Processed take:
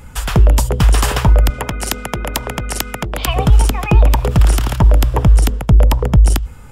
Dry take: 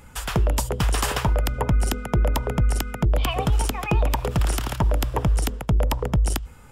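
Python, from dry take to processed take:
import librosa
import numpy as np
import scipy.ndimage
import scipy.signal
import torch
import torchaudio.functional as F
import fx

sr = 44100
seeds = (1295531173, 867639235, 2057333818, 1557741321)

y = fx.low_shelf(x, sr, hz=160.0, db=6.5)
y = fx.spectral_comp(y, sr, ratio=2.0, at=(1.5, 3.28))
y = F.gain(torch.from_numpy(y), 6.0).numpy()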